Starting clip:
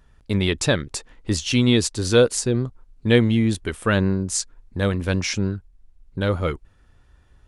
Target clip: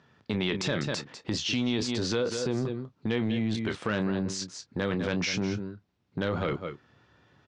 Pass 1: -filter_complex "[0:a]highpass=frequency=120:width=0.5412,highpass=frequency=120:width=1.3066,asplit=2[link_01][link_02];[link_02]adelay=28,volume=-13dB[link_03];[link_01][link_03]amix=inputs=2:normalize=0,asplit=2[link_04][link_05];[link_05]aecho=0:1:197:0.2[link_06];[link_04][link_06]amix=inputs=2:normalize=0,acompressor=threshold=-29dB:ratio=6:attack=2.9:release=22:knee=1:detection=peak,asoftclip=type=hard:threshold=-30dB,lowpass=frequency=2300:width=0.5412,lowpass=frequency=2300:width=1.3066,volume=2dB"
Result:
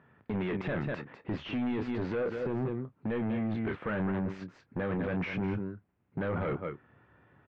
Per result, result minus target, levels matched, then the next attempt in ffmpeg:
hard clipping: distortion +22 dB; 4,000 Hz band −13.5 dB
-filter_complex "[0:a]highpass=frequency=120:width=0.5412,highpass=frequency=120:width=1.3066,asplit=2[link_01][link_02];[link_02]adelay=28,volume=-13dB[link_03];[link_01][link_03]amix=inputs=2:normalize=0,asplit=2[link_04][link_05];[link_05]aecho=0:1:197:0.2[link_06];[link_04][link_06]amix=inputs=2:normalize=0,acompressor=threshold=-29dB:ratio=6:attack=2.9:release=22:knee=1:detection=peak,asoftclip=type=hard:threshold=-18dB,lowpass=frequency=2300:width=0.5412,lowpass=frequency=2300:width=1.3066,volume=2dB"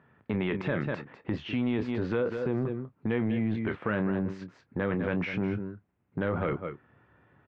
4,000 Hz band −13.0 dB
-filter_complex "[0:a]highpass=frequency=120:width=0.5412,highpass=frequency=120:width=1.3066,asplit=2[link_01][link_02];[link_02]adelay=28,volume=-13dB[link_03];[link_01][link_03]amix=inputs=2:normalize=0,asplit=2[link_04][link_05];[link_05]aecho=0:1:197:0.2[link_06];[link_04][link_06]amix=inputs=2:normalize=0,acompressor=threshold=-29dB:ratio=6:attack=2.9:release=22:knee=1:detection=peak,asoftclip=type=hard:threshold=-18dB,lowpass=frequency=5500:width=0.5412,lowpass=frequency=5500:width=1.3066,volume=2dB"

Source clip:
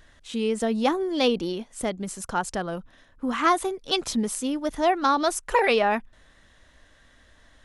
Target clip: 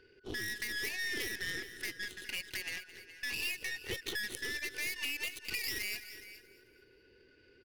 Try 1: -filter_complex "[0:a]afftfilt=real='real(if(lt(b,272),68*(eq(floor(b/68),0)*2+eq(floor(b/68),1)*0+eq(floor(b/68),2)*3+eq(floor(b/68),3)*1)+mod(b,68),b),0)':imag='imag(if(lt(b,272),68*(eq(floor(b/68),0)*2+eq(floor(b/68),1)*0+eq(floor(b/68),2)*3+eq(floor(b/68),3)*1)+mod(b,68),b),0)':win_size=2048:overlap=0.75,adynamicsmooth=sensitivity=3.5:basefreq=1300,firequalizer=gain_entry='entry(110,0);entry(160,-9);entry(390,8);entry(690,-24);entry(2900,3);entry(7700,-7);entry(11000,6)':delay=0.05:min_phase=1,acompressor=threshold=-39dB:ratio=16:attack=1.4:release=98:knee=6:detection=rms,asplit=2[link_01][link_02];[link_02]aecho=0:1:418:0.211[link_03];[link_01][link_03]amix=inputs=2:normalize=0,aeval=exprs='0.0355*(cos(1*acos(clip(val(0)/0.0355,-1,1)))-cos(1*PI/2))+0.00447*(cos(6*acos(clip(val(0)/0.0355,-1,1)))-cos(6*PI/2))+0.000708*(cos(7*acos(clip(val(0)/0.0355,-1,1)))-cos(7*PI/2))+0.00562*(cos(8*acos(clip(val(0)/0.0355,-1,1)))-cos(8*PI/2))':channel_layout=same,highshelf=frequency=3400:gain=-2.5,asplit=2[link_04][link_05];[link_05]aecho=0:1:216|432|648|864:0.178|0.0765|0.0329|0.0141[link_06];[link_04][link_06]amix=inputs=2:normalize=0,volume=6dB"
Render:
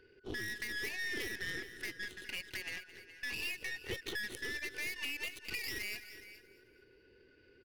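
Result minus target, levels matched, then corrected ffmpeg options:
8,000 Hz band −3.0 dB
-filter_complex "[0:a]afftfilt=real='real(if(lt(b,272),68*(eq(floor(b/68),0)*2+eq(floor(b/68),1)*0+eq(floor(b/68),2)*3+eq(floor(b/68),3)*1)+mod(b,68),b),0)':imag='imag(if(lt(b,272),68*(eq(floor(b/68),0)*2+eq(floor(b/68),1)*0+eq(floor(b/68),2)*3+eq(floor(b/68),3)*1)+mod(b,68),b),0)':win_size=2048:overlap=0.75,adynamicsmooth=sensitivity=3.5:basefreq=1300,firequalizer=gain_entry='entry(110,0);entry(160,-9);entry(390,8);entry(690,-24);entry(2900,3);entry(7700,-7);entry(11000,6)':delay=0.05:min_phase=1,acompressor=threshold=-39dB:ratio=16:attack=1.4:release=98:knee=6:detection=rms,asplit=2[link_01][link_02];[link_02]aecho=0:1:418:0.211[link_03];[link_01][link_03]amix=inputs=2:normalize=0,aeval=exprs='0.0355*(cos(1*acos(clip(val(0)/0.0355,-1,1)))-cos(1*PI/2))+0.00447*(cos(6*acos(clip(val(0)/0.0355,-1,1)))-cos(6*PI/2))+0.000708*(cos(7*acos(clip(val(0)/0.0355,-1,1)))-cos(7*PI/2))+0.00562*(cos(8*acos(clip(val(0)/0.0355,-1,1)))-cos(8*PI/2))':channel_layout=same,highshelf=frequency=3400:gain=4,asplit=2[link_04][link_05];[link_05]aecho=0:1:216|432|648|864:0.178|0.0765|0.0329|0.0141[link_06];[link_04][link_06]amix=inputs=2:normalize=0,volume=6dB"

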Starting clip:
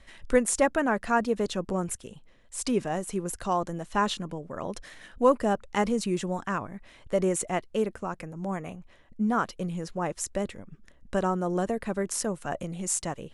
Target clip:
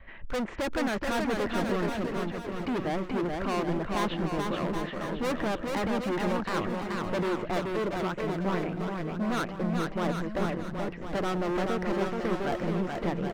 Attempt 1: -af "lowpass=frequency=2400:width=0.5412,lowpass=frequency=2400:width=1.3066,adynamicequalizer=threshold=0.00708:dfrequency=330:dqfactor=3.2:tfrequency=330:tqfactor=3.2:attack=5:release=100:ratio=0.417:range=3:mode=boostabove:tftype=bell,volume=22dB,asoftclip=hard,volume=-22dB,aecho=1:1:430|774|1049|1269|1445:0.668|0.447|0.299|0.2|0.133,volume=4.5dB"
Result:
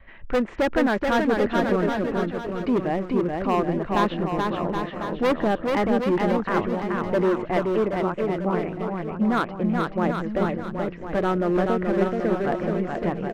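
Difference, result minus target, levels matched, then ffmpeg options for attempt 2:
gain into a clipping stage and back: distortion −7 dB
-af "lowpass=frequency=2400:width=0.5412,lowpass=frequency=2400:width=1.3066,adynamicequalizer=threshold=0.00708:dfrequency=330:dqfactor=3.2:tfrequency=330:tqfactor=3.2:attack=5:release=100:ratio=0.417:range=3:mode=boostabove:tftype=bell,volume=32.5dB,asoftclip=hard,volume=-32.5dB,aecho=1:1:430|774|1049|1269|1445:0.668|0.447|0.299|0.2|0.133,volume=4.5dB"

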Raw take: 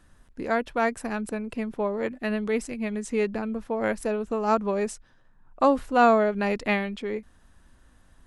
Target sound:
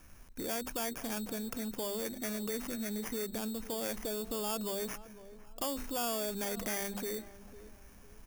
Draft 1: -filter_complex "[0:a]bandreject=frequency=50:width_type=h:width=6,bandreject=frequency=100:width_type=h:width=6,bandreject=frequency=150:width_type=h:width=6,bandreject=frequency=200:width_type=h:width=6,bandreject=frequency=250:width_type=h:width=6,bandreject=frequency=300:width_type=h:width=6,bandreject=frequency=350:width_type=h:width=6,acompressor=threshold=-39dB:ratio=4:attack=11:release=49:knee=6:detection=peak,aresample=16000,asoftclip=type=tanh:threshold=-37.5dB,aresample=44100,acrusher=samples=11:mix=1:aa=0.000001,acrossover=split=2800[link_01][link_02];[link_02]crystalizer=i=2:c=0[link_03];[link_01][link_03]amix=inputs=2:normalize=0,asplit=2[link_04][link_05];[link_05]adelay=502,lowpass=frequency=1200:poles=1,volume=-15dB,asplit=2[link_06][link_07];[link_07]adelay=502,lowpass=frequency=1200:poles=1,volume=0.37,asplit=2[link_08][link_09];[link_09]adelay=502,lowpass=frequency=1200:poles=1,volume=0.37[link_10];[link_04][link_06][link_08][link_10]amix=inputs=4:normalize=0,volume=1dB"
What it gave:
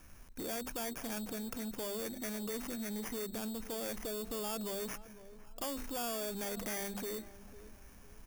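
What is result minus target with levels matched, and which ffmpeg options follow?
soft clipping: distortion +8 dB
-filter_complex "[0:a]bandreject=frequency=50:width_type=h:width=6,bandreject=frequency=100:width_type=h:width=6,bandreject=frequency=150:width_type=h:width=6,bandreject=frequency=200:width_type=h:width=6,bandreject=frequency=250:width_type=h:width=6,bandreject=frequency=300:width_type=h:width=6,bandreject=frequency=350:width_type=h:width=6,acompressor=threshold=-39dB:ratio=4:attack=11:release=49:knee=6:detection=peak,aresample=16000,asoftclip=type=tanh:threshold=-31dB,aresample=44100,acrusher=samples=11:mix=1:aa=0.000001,acrossover=split=2800[link_01][link_02];[link_02]crystalizer=i=2:c=0[link_03];[link_01][link_03]amix=inputs=2:normalize=0,asplit=2[link_04][link_05];[link_05]adelay=502,lowpass=frequency=1200:poles=1,volume=-15dB,asplit=2[link_06][link_07];[link_07]adelay=502,lowpass=frequency=1200:poles=1,volume=0.37,asplit=2[link_08][link_09];[link_09]adelay=502,lowpass=frequency=1200:poles=1,volume=0.37[link_10];[link_04][link_06][link_08][link_10]amix=inputs=4:normalize=0,volume=1dB"

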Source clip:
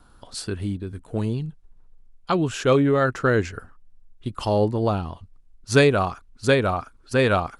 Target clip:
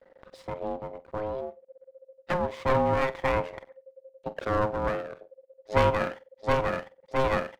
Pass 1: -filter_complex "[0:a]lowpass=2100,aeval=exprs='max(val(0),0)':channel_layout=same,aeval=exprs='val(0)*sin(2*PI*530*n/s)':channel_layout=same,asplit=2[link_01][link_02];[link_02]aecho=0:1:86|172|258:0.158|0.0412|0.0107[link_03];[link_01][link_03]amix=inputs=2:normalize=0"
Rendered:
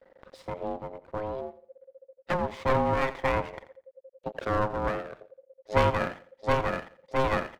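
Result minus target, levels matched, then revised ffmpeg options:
echo 39 ms late
-filter_complex "[0:a]lowpass=2100,aeval=exprs='max(val(0),0)':channel_layout=same,aeval=exprs='val(0)*sin(2*PI*530*n/s)':channel_layout=same,asplit=2[link_01][link_02];[link_02]aecho=0:1:47|94|141:0.158|0.0412|0.0107[link_03];[link_01][link_03]amix=inputs=2:normalize=0"

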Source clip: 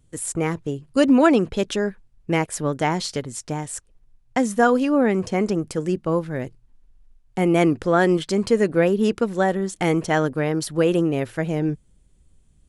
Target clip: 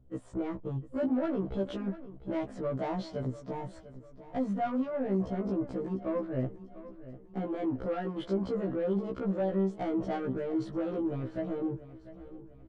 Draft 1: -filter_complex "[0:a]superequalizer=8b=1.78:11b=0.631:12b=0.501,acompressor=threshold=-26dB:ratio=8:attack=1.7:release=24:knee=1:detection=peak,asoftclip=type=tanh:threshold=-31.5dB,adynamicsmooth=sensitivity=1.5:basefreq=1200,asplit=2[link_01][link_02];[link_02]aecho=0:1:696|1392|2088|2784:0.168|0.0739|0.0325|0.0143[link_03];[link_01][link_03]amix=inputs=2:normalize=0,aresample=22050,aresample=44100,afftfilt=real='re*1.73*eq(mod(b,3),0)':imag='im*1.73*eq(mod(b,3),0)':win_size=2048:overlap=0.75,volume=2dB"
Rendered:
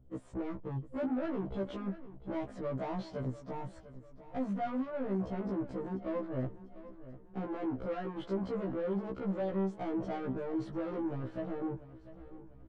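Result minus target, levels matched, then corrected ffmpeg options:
soft clipping: distortion +8 dB
-filter_complex "[0:a]superequalizer=8b=1.78:11b=0.631:12b=0.501,acompressor=threshold=-26dB:ratio=8:attack=1.7:release=24:knee=1:detection=peak,asoftclip=type=tanh:threshold=-24dB,adynamicsmooth=sensitivity=1.5:basefreq=1200,asplit=2[link_01][link_02];[link_02]aecho=0:1:696|1392|2088|2784:0.168|0.0739|0.0325|0.0143[link_03];[link_01][link_03]amix=inputs=2:normalize=0,aresample=22050,aresample=44100,afftfilt=real='re*1.73*eq(mod(b,3),0)':imag='im*1.73*eq(mod(b,3),0)':win_size=2048:overlap=0.75,volume=2dB"

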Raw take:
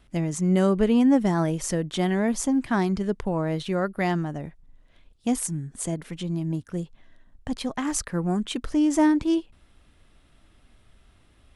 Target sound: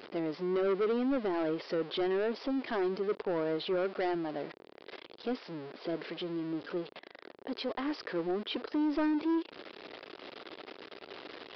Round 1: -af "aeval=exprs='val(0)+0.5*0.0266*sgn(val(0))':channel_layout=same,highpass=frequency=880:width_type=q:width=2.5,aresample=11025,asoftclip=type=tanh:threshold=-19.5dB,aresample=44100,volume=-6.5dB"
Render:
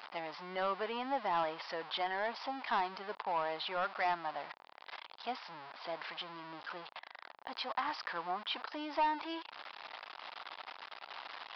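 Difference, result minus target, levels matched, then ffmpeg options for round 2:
1,000 Hz band +11.0 dB
-af "aeval=exprs='val(0)+0.5*0.0266*sgn(val(0))':channel_layout=same,highpass=frequency=400:width_type=q:width=2.5,aresample=11025,asoftclip=type=tanh:threshold=-19.5dB,aresample=44100,volume=-6.5dB"

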